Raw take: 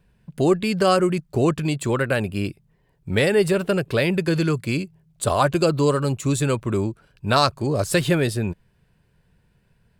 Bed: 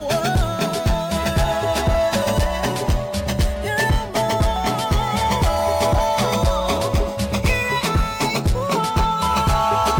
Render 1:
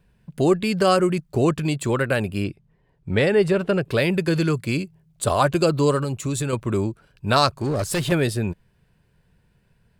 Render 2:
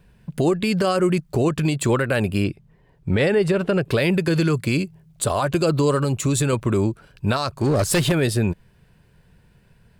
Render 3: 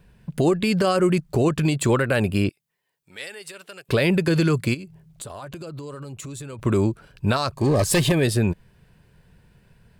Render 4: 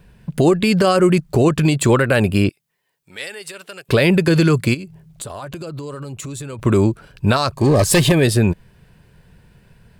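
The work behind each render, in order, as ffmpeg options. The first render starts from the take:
-filter_complex "[0:a]asettb=1/sr,asplit=3[s0][s1][s2];[s0]atrim=end=2.444[s3];[s1]atrim=start=2.44:end=3.85,asetpts=PTS-STARTPTS,afade=t=in:d=0.004:c=qsin,afade=t=out:st=1.406:d=0.004:c=qsin,aemphasis=mode=reproduction:type=50fm[s4];[s2]atrim=start=3.846[s5];[s3][s4]acrossfade=d=0.004:c1=hsin:c2=qsin[s6];[s6][s5]acrossfade=d=0.004:c1=qsin:c2=hsin,asettb=1/sr,asplit=3[s7][s8][s9];[s7]atrim=end=6.034[s10];[s8]atrim=start=6.03:end=6.53,asetpts=PTS-STARTPTS,afade=t=in:d=0.004:c=qsin,afade=t=out:st=0.496:d=0.004:c=qsin,acompressor=threshold=0.0891:ratio=6:attack=3.2:release=140:knee=1:detection=peak[s11];[s9]atrim=start=6.526[s12];[s10][s11]acrossfade=d=0.004:c1=hsin:c2=qsin[s13];[s13][s12]acrossfade=d=0.004:c1=qsin:c2=hsin,asettb=1/sr,asplit=3[s14][s15][s16];[s14]atrim=end=7.554[s17];[s15]atrim=start=7.55:end=8.12,asetpts=PTS-STARTPTS,afade=t=in:d=0.004:c=qsin,afade=t=out:st=0.566:d=0.004:c=qsin,volume=9.44,asoftclip=hard,volume=0.106[s18];[s16]atrim=start=8.116[s19];[s17][s18]acrossfade=d=0.004:c1=hsin:c2=qsin[s20];[s20][s19]acrossfade=d=0.004:c1=qsin:c2=hsin"
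-filter_complex "[0:a]asplit=2[s0][s1];[s1]acompressor=threshold=0.0501:ratio=6,volume=1.19[s2];[s0][s2]amix=inputs=2:normalize=0,alimiter=limit=0.282:level=0:latency=1:release=68"
-filter_complex "[0:a]asettb=1/sr,asplit=3[s0][s1][s2];[s0]atrim=end=2.494[s3];[s1]atrim=start=2.49:end=3.89,asetpts=PTS-STARTPTS,afade=t=in:d=0.004:c=qsin,afade=t=out:st=1.396:d=0.004:c=qsin,aderivative[s4];[s2]atrim=start=3.886[s5];[s3][s4]acrossfade=d=0.004:c1=hsin:c2=qsin[s6];[s6][s5]acrossfade=d=0.004:c1=qsin:c2=hsin,asplit=3[s7][s8][s9];[s7]afade=t=out:st=4.73:d=0.02[s10];[s8]acompressor=threshold=0.0251:ratio=16:attack=3.2:release=140:knee=1:detection=peak,afade=t=in:st=4.73:d=0.02,afade=t=out:st=6.58:d=0.02[s11];[s9]afade=t=in:st=6.58:d=0.02[s12];[s10][s11][s12]amix=inputs=3:normalize=0,asettb=1/sr,asplit=3[s13][s14][s15];[s13]atrim=end=7.534[s16];[s14]atrim=start=7.53:end=8.23,asetpts=PTS-STARTPTS,afade=t=in:d=0.004:c=qsin,afade=t=out:st=0.696:d=0.004:c=qsin,asuperstop=centerf=1400:order=12:qfactor=5.8[s17];[s15]atrim=start=8.226[s18];[s16][s17]acrossfade=d=0.004:c1=hsin:c2=qsin[s19];[s19][s18]acrossfade=d=0.004:c1=qsin:c2=hsin"
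-af "volume=1.88"

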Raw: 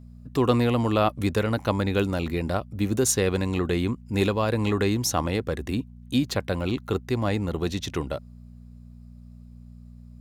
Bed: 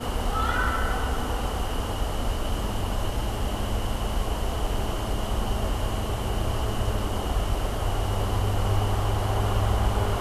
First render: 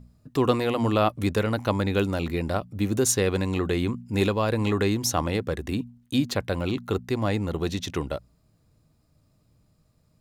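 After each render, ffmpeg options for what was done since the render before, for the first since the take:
-af "bandreject=f=60:t=h:w=4,bandreject=f=120:t=h:w=4,bandreject=f=180:t=h:w=4,bandreject=f=240:t=h:w=4"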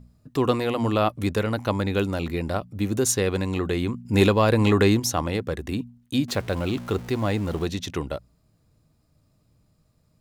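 -filter_complex "[0:a]asettb=1/sr,asplit=3[s0][s1][s2];[s0]atrim=end=4.054[s3];[s1]atrim=start=4.05:end=5,asetpts=PTS-STARTPTS,afade=t=in:d=0.004:c=qsin,afade=t=out:st=0.946:d=0.004:c=qsin,acontrast=38[s4];[s2]atrim=start=4.996[s5];[s3][s4]acrossfade=d=0.004:c1=hsin:c2=qsin[s6];[s6][s5]acrossfade=d=0.004:c1=qsin:c2=hsin,asettb=1/sr,asplit=3[s7][s8][s9];[s7]atrim=end=6.284[s10];[s8]atrim=start=6.28:end=7.65,asetpts=PTS-STARTPTS,afade=t=in:d=0.004:c=qsin,afade=t=out:st=1.366:d=0.004:c=qsin,aeval=exprs='val(0)+0.5*0.0158*sgn(val(0))':c=same[s11];[s9]atrim=start=7.646[s12];[s10][s11]acrossfade=d=0.004:c1=hsin:c2=qsin[s13];[s13][s12]acrossfade=d=0.004:c1=qsin:c2=hsin"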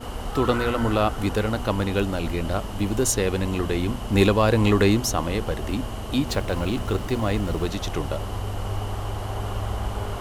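-filter_complex "[1:a]volume=0.596[s0];[0:a][s0]amix=inputs=2:normalize=0"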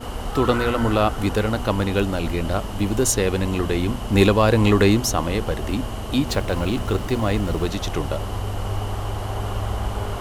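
-af "volume=1.33"

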